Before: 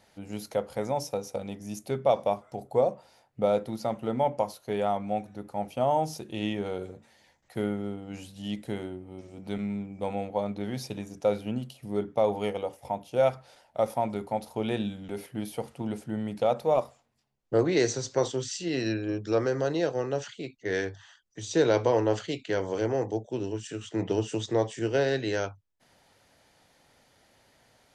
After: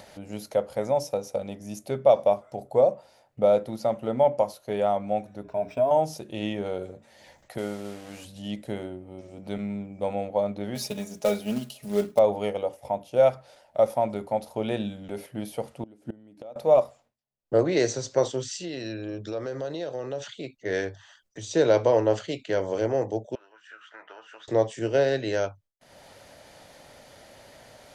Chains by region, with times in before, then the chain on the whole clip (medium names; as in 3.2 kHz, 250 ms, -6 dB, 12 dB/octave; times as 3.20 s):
5.43–5.91 s: rippled EQ curve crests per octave 1.6, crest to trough 16 dB + compression 2:1, threshold -29 dBFS + decimation joined by straight lines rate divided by 4×
7.58–8.25 s: one-bit delta coder 64 kbps, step -40.5 dBFS + bass shelf 320 Hz -7 dB
10.75–12.19 s: treble shelf 3.3 kHz +7.5 dB + short-mantissa float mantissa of 2-bit + comb 4.8 ms, depth 71%
15.83–16.56 s: peaking EQ 300 Hz +12.5 dB 0.5 oct + inverted gate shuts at -23 dBFS, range -24 dB
18.64–20.41 s: peaking EQ 3.6 kHz +8.5 dB 0.25 oct + compression 5:1, threshold -31 dBFS
23.35–24.48 s: ladder band-pass 1.5 kHz, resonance 35% + peaking EQ 1.5 kHz +10.5 dB 0.62 oct + doubling 13 ms -11 dB
whole clip: gate with hold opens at -58 dBFS; peaking EQ 590 Hz +8 dB 0.36 oct; upward compressor, threshold -39 dBFS